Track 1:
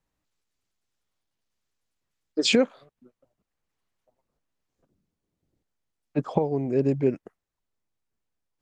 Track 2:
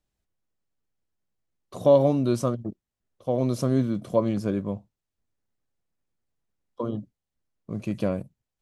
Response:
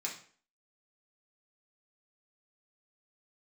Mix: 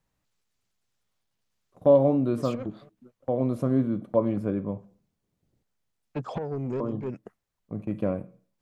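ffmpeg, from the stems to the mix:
-filter_complex "[0:a]equalizer=frequency=125:width_type=o:width=0.33:gain=5,equalizer=frequency=200:width_type=o:width=0.33:gain=3,equalizer=frequency=315:width_type=o:width=0.33:gain=-4,acompressor=threshold=-27dB:ratio=4,asoftclip=type=tanh:threshold=-27dB,volume=2.5dB[link_01];[1:a]highshelf=frequency=3300:gain=-8.5,agate=range=-23dB:threshold=-34dB:ratio=16:detection=peak,equalizer=frequency=5400:width=0.92:gain=-14.5,volume=-2dB,asplit=3[link_02][link_03][link_04];[link_03]volume=-9dB[link_05];[link_04]apad=whole_len=379701[link_06];[link_01][link_06]sidechaincompress=threshold=-41dB:ratio=10:attack=32:release=111[link_07];[2:a]atrim=start_sample=2205[link_08];[link_05][link_08]afir=irnorm=-1:irlink=0[link_09];[link_07][link_02][link_09]amix=inputs=3:normalize=0"

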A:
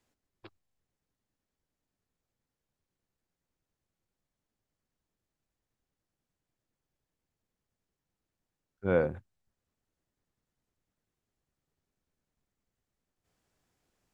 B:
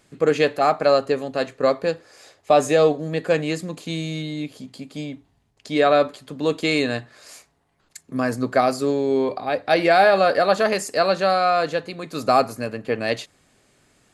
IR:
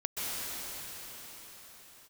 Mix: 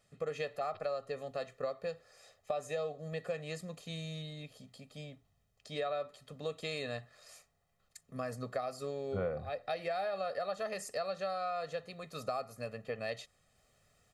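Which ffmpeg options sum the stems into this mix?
-filter_complex "[0:a]adelay=300,volume=1.5dB[link_01];[1:a]volume=-14.5dB[link_02];[link_01][link_02]amix=inputs=2:normalize=0,aecho=1:1:1.6:0.76,acompressor=threshold=-34dB:ratio=5"

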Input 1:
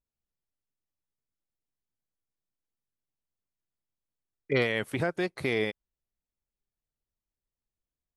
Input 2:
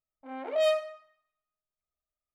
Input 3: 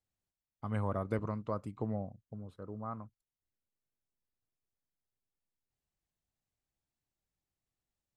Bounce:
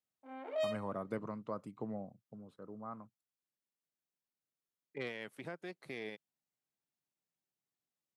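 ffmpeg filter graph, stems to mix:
ffmpeg -i stem1.wav -i stem2.wav -i stem3.wav -filter_complex "[0:a]aeval=exprs='0.211*(cos(1*acos(clip(val(0)/0.211,-1,1)))-cos(1*PI/2))+0.0133*(cos(3*acos(clip(val(0)/0.211,-1,1)))-cos(3*PI/2))+0.0119*(cos(4*acos(clip(val(0)/0.211,-1,1)))-cos(4*PI/2))':channel_layout=same,adelay=450,volume=-15dB[link_01];[1:a]volume=-8.5dB[link_02];[2:a]volume=-4dB,asplit=2[link_03][link_04];[link_04]apad=whole_len=103629[link_05];[link_02][link_05]sidechaincompress=threshold=-45dB:ratio=8:attack=42:release=390[link_06];[link_01][link_06][link_03]amix=inputs=3:normalize=0,highpass=frequency=140:width=0.5412,highpass=frequency=140:width=1.3066" out.wav

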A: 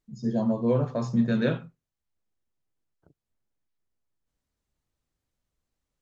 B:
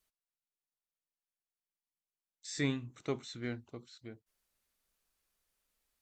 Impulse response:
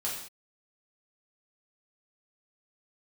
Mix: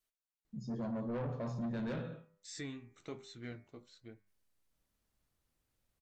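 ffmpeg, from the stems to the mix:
-filter_complex "[0:a]highshelf=frequency=3900:gain=-6.5,adelay=450,volume=-1.5dB,asplit=2[link_01][link_02];[link_02]volume=-10.5dB[link_03];[1:a]flanger=delay=8.8:depth=3.2:regen=-49:speed=1.2:shape=sinusoidal,volume=-1.5dB[link_04];[2:a]atrim=start_sample=2205[link_05];[link_03][link_05]afir=irnorm=-1:irlink=0[link_06];[link_01][link_04][link_06]amix=inputs=3:normalize=0,bandreject=frequency=99.89:width_type=h:width=4,bandreject=frequency=199.78:width_type=h:width=4,bandreject=frequency=299.67:width_type=h:width=4,bandreject=frequency=399.56:width_type=h:width=4,bandreject=frequency=499.45:width_type=h:width=4,bandreject=frequency=599.34:width_type=h:width=4,bandreject=frequency=699.23:width_type=h:width=4,bandreject=frequency=799.12:width_type=h:width=4,bandreject=frequency=899.01:width_type=h:width=4,bandreject=frequency=998.9:width_type=h:width=4,bandreject=frequency=1098.79:width_type=h:width=4,bandreject=frequency=1198.68:width_type=h:width=4,bandreject=frequency=1298.57:width_type=h:width=4,bandreject=frequency=1398.46:width_type=h:width=4,bandreject=frequency=1498.35:width_type=h:width=4,bandreject=frequency=1598.24:width_type=h:width=4,bandreject=frequency=1698.13:width_type=h:width=4,bandreject=frequency=1798.02:width_type=h:width=4,bandreject=frequency=1897.91:width_type=h:width=4,bandreject=frequency=1997.8:width_type=h:width=4,bandreject=frequency=2097.69:width_type=h:width=4,bandreject=frequency=2197.58:width_type=h:width=4,bandreject=frequency=2297.47:width_type=h:width=4,bandreject=frequency=2397.36:width_type=h:width=4,bandreject=frequency=2497.25:width_type=h:width=4,asoftclip=type=tanh:threshold=-25.5dB,alimiter=level_in=10.5dB:limit=-24dB:level=0:latency=1:release=410,volume=-10.5dB"

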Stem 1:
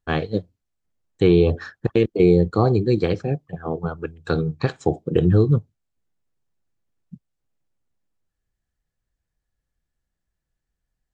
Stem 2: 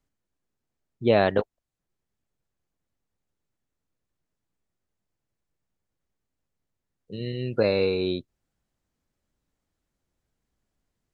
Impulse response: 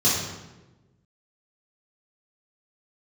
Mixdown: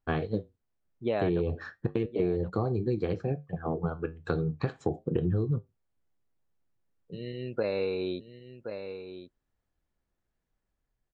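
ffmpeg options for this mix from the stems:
-filter_complex "[0:a]flanger=delay=7.7:depth=4.3:regen=-69:speed=0.38:shape=triangular,volume=1.5dB[link_01];[1:a]lowshelf=frequency=280:gain=-8,dynaudnorm=framelen=100:gausssize=11:maxgain=4dB,volume=-6dB,asplit=2[link_02][link_03];[link_03]volume=-11.5dB,aecho=0:1:1072:1[link_04];[link_01][link_02][link_04]amix=inputs=3:normalize=0,highshelf=frequency=3400:gain=-11.5,acompressor=threshold=-25dB:ratio=6"

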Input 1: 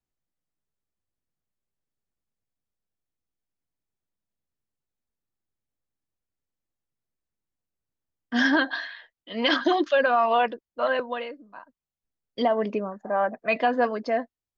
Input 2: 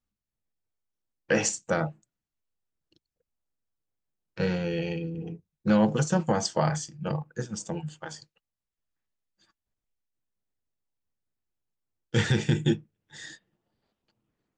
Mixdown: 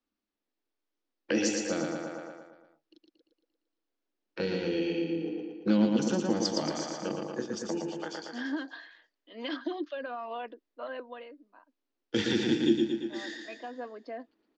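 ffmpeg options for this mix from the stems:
ffmpeg -i stem1.wav -i stem2.wav -filter_complex "[0:a]volume=-14.5dB[link_01];[1:a]volume=2dB,asplit=3[link_02][link_03][link_04];[link_03]volume=-4dB[link_05];[link_04]apad=whole_len=642888[link_06];[link_01][link_06]sidechaincompress=threshold=-32dB:ratio=8:attack=37:release=1390[link_07];[link_05]aecho=0:1:115|230|345|460|575|690|805|920:1|0.54|0.292|0.157|0.085|0.0459|0.0248|0.0134[link_08];[link_07][link_02][link_08]amix=inputs=3:normalize=0,lowpass=frequency=5300:width=0.5412,lowpass=frequency=5300:width=1.3066,lowshelf=frequency=200:width_type=q:width=3:gain=-12.5,acrossover=split=300|3000[link_09][link_10][link_11];[link_10]acompressor=threshold=-35dB:ratio=6[link_12];[link_09][link_12][link_11]amix=inputs=3:normalize=0" out.wav

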